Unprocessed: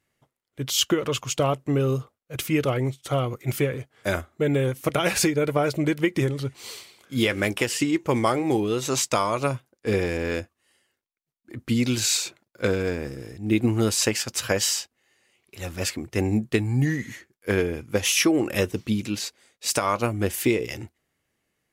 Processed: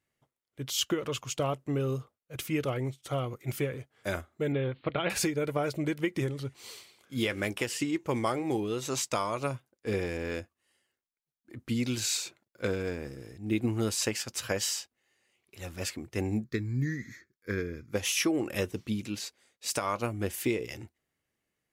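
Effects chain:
0:04.52–0:05.10: Butterworth low-pass 4,300 Hz 96 dB per octave
0:16.44–0:17.93: phaser with its sweep stopped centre 2,900 Hz, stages 6
level −7.5 dB

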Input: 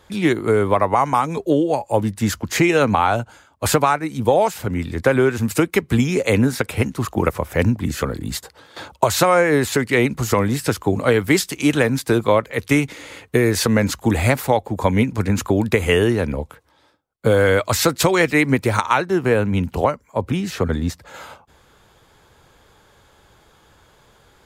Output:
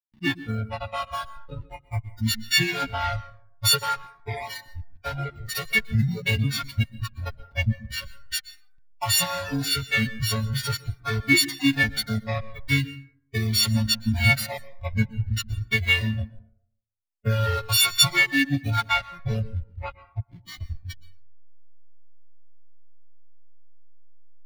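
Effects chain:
every partial snapped to a pitch grid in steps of 4 semitones
high-shelf EQ 2,600 Hz +4.5 dB
slack as between gear wheels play −8 dBFS
noise reduction from a noise print of the clip's start 23 dB
octave-band graphic EQ 125/250/500/1,000/2,000/4,000/8,000 Hz +10/+7/−9/−3/+6/+6/−10 dB
dense smooth reverb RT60 0.61 s, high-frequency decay 0.5×, pre-delay 110 ms, DRR 17 dB
flanger whose copies keep moving one way falling 0.44 Hz
level −6 dB

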